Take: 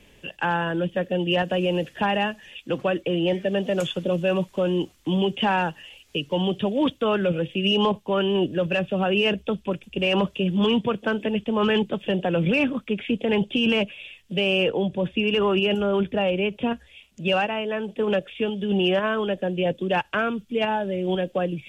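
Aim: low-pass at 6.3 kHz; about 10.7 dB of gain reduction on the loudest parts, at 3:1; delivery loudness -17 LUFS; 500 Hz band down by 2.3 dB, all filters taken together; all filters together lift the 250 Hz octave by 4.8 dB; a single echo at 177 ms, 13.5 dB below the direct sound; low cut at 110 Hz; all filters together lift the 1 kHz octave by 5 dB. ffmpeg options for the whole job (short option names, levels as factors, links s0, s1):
-af "highpass=110,lowpass=6300,equalizer=f=250:t=o:g=8.5,equalizer=f=500:t=o:g=-8,equalizer=f=1000:t=o:g=8.5,acompressor=threshold=0.0398:ratio=3,aecho=1:1:177:0.211,volume=4.22"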